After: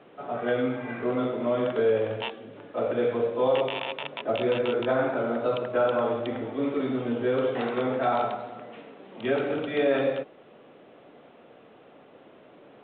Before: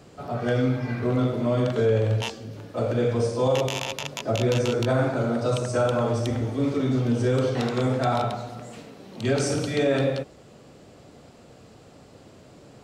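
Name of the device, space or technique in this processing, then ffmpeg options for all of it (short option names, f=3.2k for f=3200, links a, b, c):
telephone: -af "highpass=290,lowpass=3.3k" -ar 8000 -c:a pcm_alaw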